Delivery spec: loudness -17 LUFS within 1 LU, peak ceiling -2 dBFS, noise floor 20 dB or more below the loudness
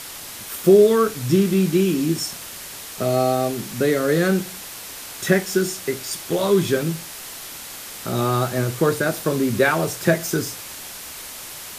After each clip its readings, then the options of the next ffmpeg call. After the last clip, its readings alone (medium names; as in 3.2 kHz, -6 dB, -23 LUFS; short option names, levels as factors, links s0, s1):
noise floor -36 dBFS; noise floor target -41 dBFS; loudness -20.5 LUFS; peak level -2.5 dBFS; loudness target -17.0 LUFS
-> -af "afftdn=nr=6:nf=-36"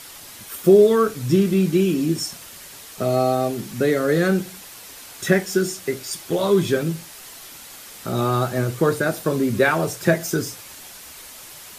noise floor -41 dBFS; loudness -20.5 LUFS; peak level -2.5 dBFS; loudness target -17.0 LUFS
-> -af "volume=1.5,alimiter=limit=0.794:level=0:latency=1"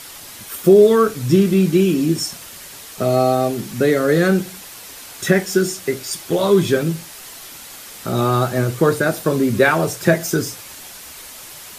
loudness -17.0 LUFS; peak level -2.0 dBFS; noise floor -37 dBFS